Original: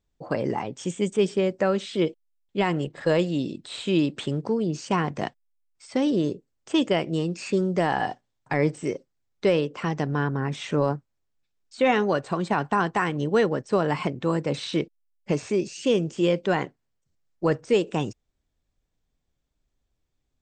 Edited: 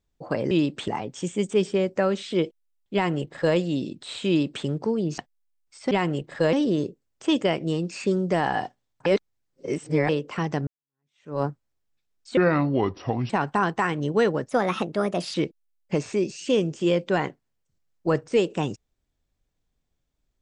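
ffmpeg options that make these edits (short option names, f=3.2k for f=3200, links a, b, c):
-filter_complex "[0:a]asplit=13[a][b][c][d][e][f][g][h][i][j][k][l][m];[a]atrim=end=0.512[n];[b]atrim=start=3.908:end=4.282[o];[c]atrim=start=0.508:end=4.812[p];[d]atrim=start=5.258:end=5.992[q];[e]atrim=start=2.568:end=3.192[r];[f]atrim=start=5.988:end=8.522[s];[g]atrim=start=8.518:end=9.552,asetpts=PTS-STARTPTS,areverse[t];[h]atrim=start=9.548:end=10.13,asetpts=PTS-STARTPTS,afade=t=out:st=0.578:d=0.004:c=hsin[u];[i]atrim=start=10.13:end=11.834,asetpts=PTS-STARTPTS,afade=t=in:d=0.74:c=exp[v];[j]atrim=start=11.83:end=12.47,asetpts=PTS-STARTPTS,asetrate=30429,aresample=44100,atrim=end_sample=40904,asetpts=PTS-STARTPTS[w];[k]atrim=start=12.466:end=13.664[x];[l]atrim=start=13.66:end=14.71,asetpts=PTS-STARTPTS,asetrate=54243,aresample=44100,atrim=end_sample=37646,asetpts=PTS-STARTPTS[y];[m]atrim=start=14.706[z];[n][o]acrossfade=d=0.004:c1=hsin:c2=hsin[aa];[aa][p]acrossfade=d=0.004:c1=hsin:c2=hsin[ab];[ab][q]acrossfade=d=0.004:c1=hsin:c2=hsin[ac];[ac][r]acrossfade=d=0.004:c1=hsin:c2=hsin[ad];[ad][s]acrossfade=d=0.004:c1=hsin:c2=hsin[ae];[ae][t]acrossfade=d=0.004:c1=hsin:c2=hsin[af];[u][v]concat=n=2:v=0:a=1[ag];[af][ag]acrossfade=d=0.004:c1=hsin:c2=hsin[ah];[ah][w]acrossfade=d=0.004:c1=hsin:c2=hsin[ai];[ai][x]acrossfade=d=0.004:c1=hsin:c2=hsin[aj];[aj][y]acrossfade=d=0.004:c1=hsin:c2=hsin[ak];[ak][z]acrossfade=d=0.004:c1=hsin:c2=hsin"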